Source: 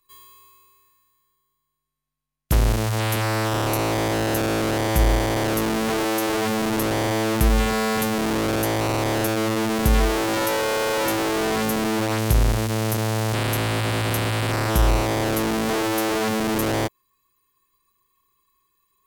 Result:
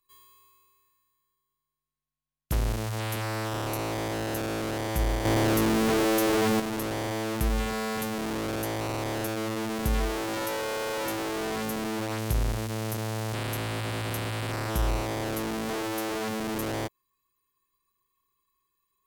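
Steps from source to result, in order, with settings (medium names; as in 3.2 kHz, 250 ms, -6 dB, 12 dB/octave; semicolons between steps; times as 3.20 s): 5.25–6.60 s: waveshaping leveller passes 3; trim -8.5 dB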